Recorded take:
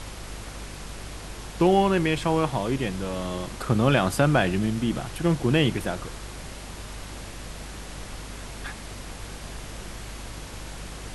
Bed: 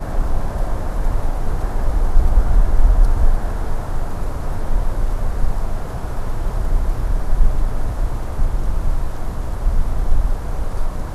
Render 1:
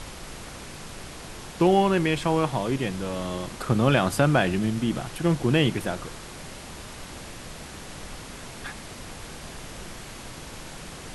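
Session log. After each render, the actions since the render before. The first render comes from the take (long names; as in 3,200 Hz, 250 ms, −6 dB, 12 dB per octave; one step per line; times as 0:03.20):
hum removal 50 Hz, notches 2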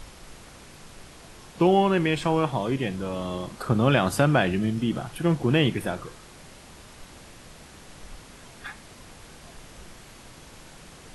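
noise reduction from a noise print 7 dB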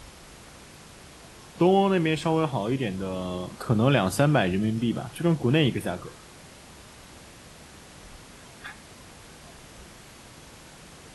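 high-pass filter 42 Hz
dynamic equaliser 1,400 Hz, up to −3 dB, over −39 dBFS, Q 0.9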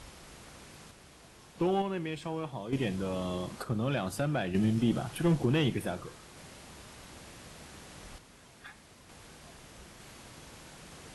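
sample-and-hold tremolo 1.1 Hz, depth 70%
tube saturation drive 16 dB, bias 0.35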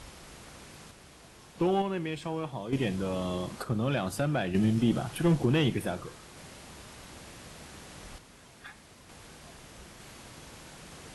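level +2 dB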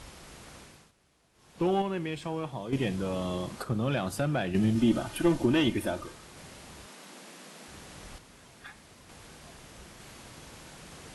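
0:00.57–0:01.67: duck −15 dB, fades 0.34 s
0:04.75–0:06.12: comb filter 3.3 ms
0:06.86–0:07.68: Butterworth high-pass 170 Hz 48 dB per octave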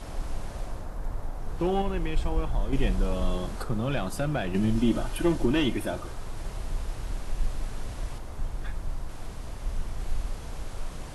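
mix in bed −14 dB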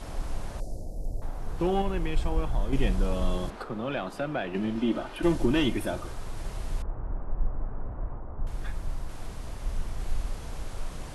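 0:00.60–0:01.22: inverse Chebyshev band-stop filter 1,200–2,800 Hz, stop band 50 dB
0:03.50–0:05.23: three-way crossover with the lows and the highs turned down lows −14 dB, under 210 Hz, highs −14 dB, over 4,100 Hz
0:06.82–0:08.47: low-pass filter 1,300 Hz 24 dB per octave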